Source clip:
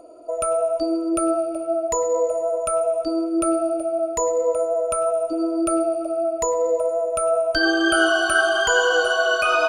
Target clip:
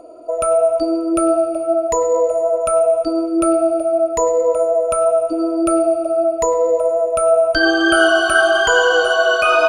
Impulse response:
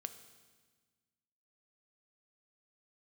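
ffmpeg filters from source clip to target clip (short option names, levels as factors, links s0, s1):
-filter_complex "[0:a]asplit=2[s0][s1];[1:a]atrim=start_sample=2205,highshelf=f=6500:g=-11[s2];[s1][s2]afir=irnorm=-1:irlink=0,volume=3.35[s3];[s0][s3]amix=inputs=2:normalize=0,volume=0.562"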